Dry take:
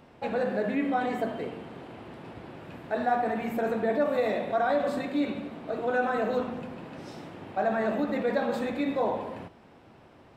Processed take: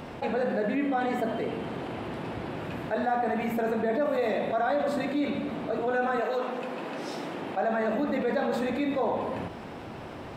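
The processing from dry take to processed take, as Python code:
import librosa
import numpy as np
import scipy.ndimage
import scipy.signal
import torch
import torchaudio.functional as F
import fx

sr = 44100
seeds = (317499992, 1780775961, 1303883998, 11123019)

y = fx.highpass(x, sr, hz=fx.line((6.2, 500.0), (7.91, 140.0)), slope=12, at=(6.2, 7.91), fade=0.02)
y = fx.env_flatten(y, sr, amount_pct=50)
y = F.gain(torch.from_numpy(y), -2.5).numpy()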